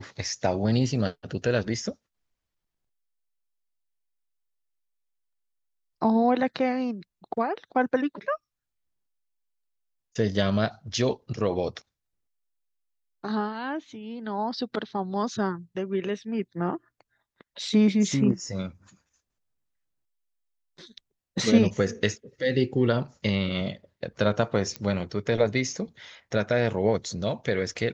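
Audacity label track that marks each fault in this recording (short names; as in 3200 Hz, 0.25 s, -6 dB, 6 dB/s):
24.760000	24.760000	pop -17 dBFS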